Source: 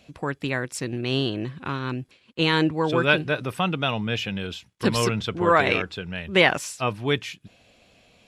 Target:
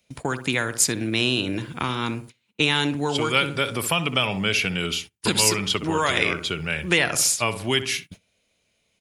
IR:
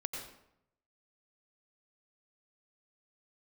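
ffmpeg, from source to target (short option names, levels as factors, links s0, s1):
-filter_complex "[0:a]asetrate=40517,aresample=44100,asplit=2[s0][s1];[s1]adelay=63,lowpass=f=1400:p=1,volume=0.282,asplit=2[s2][s3];[s3]adelay=63,lowpass=f=1400:p=1,volume=0.37,asplit=2[s4][s5];[s5]adelay=63,lowpass=f=1400:p=1,volume=0.37,asplit=2[s6][s7];[s7]adelay=63,lowpass=f=1400:p=1,volume=0.37[s8];[s0][s2][s4][s6][s8]amix=inputs=5:normalize=0,acrossover=split=170|2400[s9][s10][s11];[s9]acompressor=threshold=0.01:ratio=4[s12];[s10]acompressor=threshold=0.0398:ratio=4[s13];[s11]acompressor=threshold=0.0282:ratio=4[s14];[s12][s13][s14]amix=inputs=3:normalize=0,agate=range=0.0891:threshold=0.00631:ratio=16:detection=peak,aemphasis=mode=production:type=75fm,volume=1.88"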